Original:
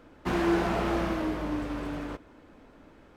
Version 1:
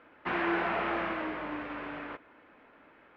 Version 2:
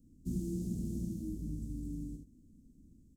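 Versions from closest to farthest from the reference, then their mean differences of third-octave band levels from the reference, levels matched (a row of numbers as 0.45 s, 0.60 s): 1, 2; 5.5 dB, 13.5 dB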